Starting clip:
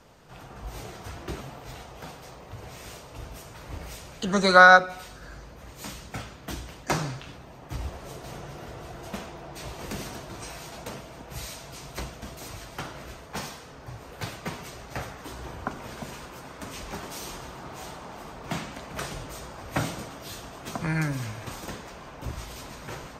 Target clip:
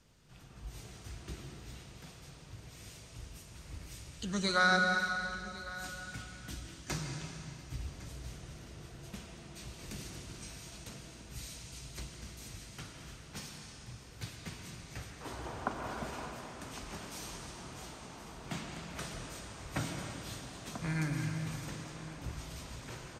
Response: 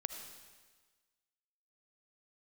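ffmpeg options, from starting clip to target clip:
-filter_complex "[0:a]asetnsamples=n=441:p=0,asendcmd='15.21 equalizer g 4;16.3 equalizer g -5.5',equalizer=f=760:w=0.54:g=-12.5,aecho=1:1:1106:0.133[s0];[1:a]atrim=start_sample=2205,asetrate=22491,aresample=44100[s1];[s0][s1]afir=irnorm=-1:irlink=0,volume=0.398"

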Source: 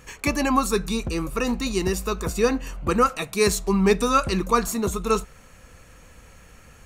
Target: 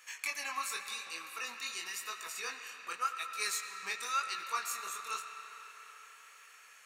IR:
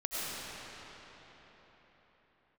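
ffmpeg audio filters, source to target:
-filter_complex "[0:a]asplit=2[s0][s1];[s1]acompressor=threshold=0.0178:ratio=6,volume=1.33[s2];[s0][s2]amix=inputs=2:normalize=0,highpass=1500,asettb=1/sr,asplit=3[s3][s4][s5];[s3]atrim=end=2.964[s6];[s4]atrim=start=2.96:end=3.83,asetpts=PTS-STARTPTS,afade=t=in:d=0.004:c=qsin,afade=t=out:st=0.866:d=0.004:c=qsin,agate=range=0.0224:threshold=0.0501:ratio=3:detection=peak[s7];[s5]atrim=start=3.826[s8];[s6][s7]acrossfade=d=0.004:c1=hsin:c2=qsin[s9];[s9][s8]acrossfade=d=0.004:c1=qsin:c2=hsin,flanger=delay=18:depth=7.8:speed=0.91,asplit=2[s10][s11];[s11]equalizer=f=2100:t=o:w=2.3:g=10[s12];[1:a]atrim=start_sample=2205[s13];[s12][s13]afir=irnorm=-1:irlink=0,volume=0.133[s14];[s10][s14]amix=inputs=2:normalize=0,volume=0.355"

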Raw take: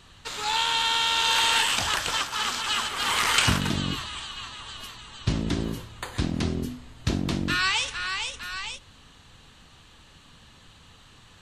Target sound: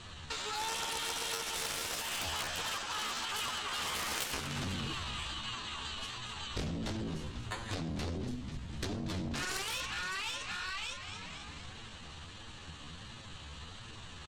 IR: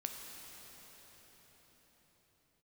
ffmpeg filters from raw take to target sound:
-filter_complex "[0:a]flanger=delay=8.7:depth=5.1:regen=0:speed=1.8:shape=sinusoidal,lowpass=f=9000:w=0.5412,lowpass=f=9000:w=1.3066,asplit=6[s0][s1][s2][s3][s4][s5];[s1]adelay=194,afreqshift=-100,volume=0.237[s6];[s2]adelay=388,afreqshift=-200,volume=0.126[s7];[s3]adelay=582,afreqshift=-300,volume=0.0668[s8];[s4]adelay=776,afreqshift=-400,volume=0.0355[s9];[s5]adelay=970,afreqshift=-500,volume=0.0186[s10];[s0][s6][s7][s8][s9][s10]amix=inputs=6:normalize=0,aeval=exprs='0.299*(cos(1*acos(clip(val(0)/0.299,-1,1)))-cos(1*PI/2))+0.0211*(cos(2*acos(clip(val(0)/0.299,-1,1)))-cos(2*PI/2))+0.00596*(cos(3*acos(clip(val(0)/0.299,-1,1)))-cos(3*PI/2))+0.133*(cos(7*acos(clip(val(0)/0.299,-1,1)))-cos(7*PI/2))+0.00335*(cos(8*acos(clip(val(0)/0.299,-1,1)))-cos(8*PI/2))':c=same,equalizer=f=66:w=1.7:g=2,acompressor=threshold=0.0112:ratio=3,atempo=0.8"

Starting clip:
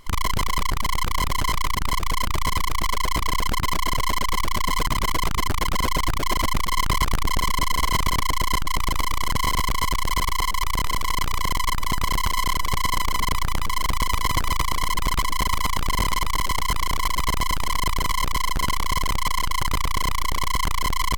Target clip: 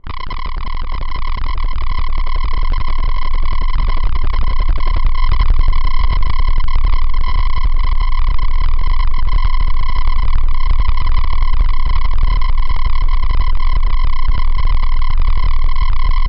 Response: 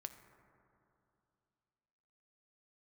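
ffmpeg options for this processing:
-af "atempo=1.3,asubboost=boost=5:cutoff=95,adynamicsmooth=sensitivity=2.5:basefreq=660" -ar 12000 -c:a libmp3lame -b:a 56k

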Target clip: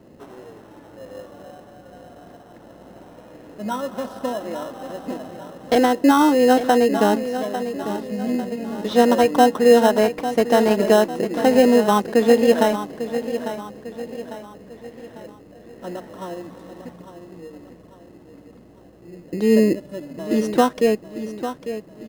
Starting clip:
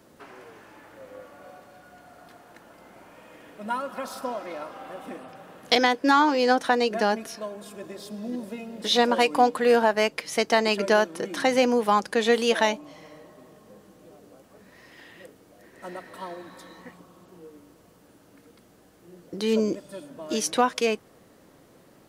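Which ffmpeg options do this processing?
-filter_complex "[0:a]tiltshelf=f=1500:g=10,aecho=1:1:849|1698|2547|3396|4245:0.282|0.124|0.0546|0.024|0.0106,asplit=2[s0][s1];[s1]acrusher=samples=19:mix=1:aa=0.000001,volume=0.531[s2];[s0][s2]amix=inputs=2:normalize=0,volume=0.631"

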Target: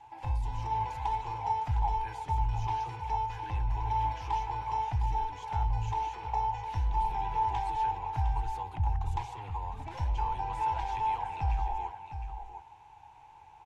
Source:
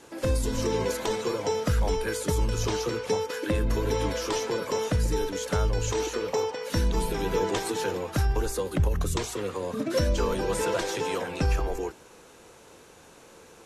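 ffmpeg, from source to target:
-af "asoftclip=type=tanh:threshold=0.0944,firequalizer=gain_entry='entry(120,0);entry(200,-23);entry(310,-18);entry(570,-23);entry(840,14);entry(1200,-15);entry(2400,-5);entry(4100,-16);entry(8400,-23);entry(14000,-28)':delay=0.05:min_phase=1,aecho=1:1:708:0.335,volume=0.794"

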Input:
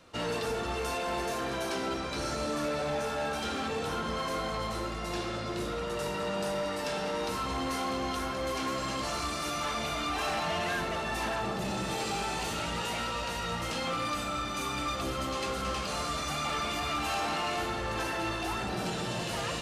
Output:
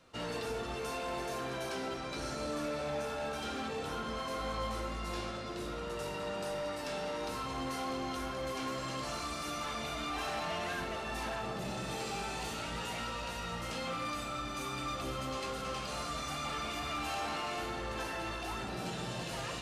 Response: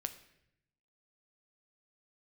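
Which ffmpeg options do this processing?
-filter_complex "[0:a]asettb=1/sr,asplit=3[s0][s1][s2];[s0]atrim=end=4.384[s3];[s1]atrim=start=4.38:end=5.31,asetpts=PTS-STARTPTS,afade=t=in:d=0.004:c=qsin,afade=t=out:st=0.926:d=0.004:c=qsin,asplit=2[s4][s5];[s5]adelay=19,volume=0.562[s6];[s4][s6]amix=inputs=2:normalize=0,atrim=end_sample=41013[s7];[s2]atrim=start=5.306[s8];[s3][s7]acrossfade=d=0.004:c1=hsin:c2=qsin[s9];[s9][s8]acrossfade=d=0.004:c1=qsin:c2=hsin[s10];[1:a]atrim=start_sample=2205[s11];[s10][s11]afir=irnorm=-1:irlink=0,volume=0.596"

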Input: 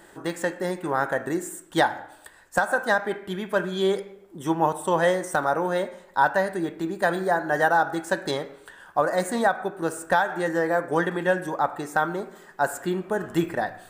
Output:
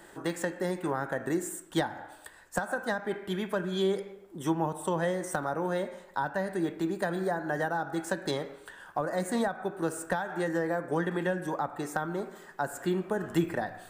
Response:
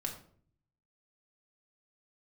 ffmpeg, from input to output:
-filter_complex "[0:a]acrossover=split=310[s0][s1];[s1]acompressor=threshold=0.0398:ratio=5[s2];[s0][s2]amix=inputs=2:normalize=0,volume=0.841"

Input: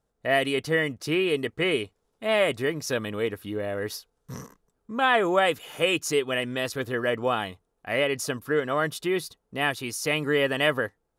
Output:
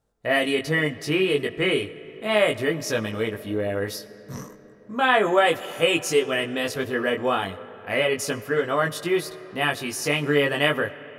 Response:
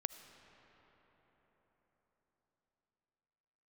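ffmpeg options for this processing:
-filter_complex "[0:a]flanger=delay=18:depth=2.9:speed=0.34,asplit=2[s0][s1];[1:a]atrim=start_sample=2205[s2];[s1][s2]afir=irnorm=-1:irlink=0,volume=1.06[s3];[s0][s3]amix=inputs=2:normalize=0"

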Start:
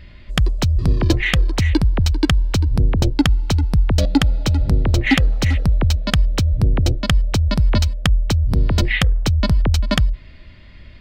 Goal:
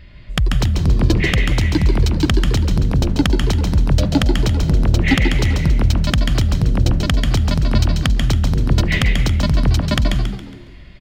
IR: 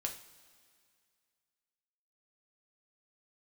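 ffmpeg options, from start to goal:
-filter_complex "[0:a]asplit=5[s0][s1][s2][s3][s4];[s1]adelay=138,afreqshift=76,volume=0.398[s5];[s2]adelay=276,afreqshift=152,volume=0.155[s6];[s3]adelay=414,afreqshift=228,volume=0.0603[s7];[s4]adelay=552,afreqshift=304,volume=0.0237[s8];[s0][s5][s6][s7][s8]amix=inputs=5:normalize=0,asplit=2[s9][s10];[1:a]atrim=start_sample=2205,adelay=139[s11];[s10][s11]afir=irnorm=-1:irlink=0,volume=0.473[s12];[s9][s12]amix=inputs=2:normalize=0,volume=0.891"

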